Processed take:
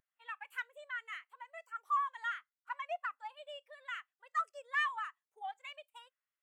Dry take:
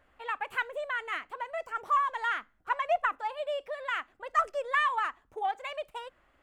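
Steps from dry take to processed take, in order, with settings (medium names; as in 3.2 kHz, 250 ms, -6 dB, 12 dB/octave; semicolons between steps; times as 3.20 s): differentiator; saturation -34 dBFS, distortion -19 dB; spectral contrast expander 1.5:1; trim +10 dB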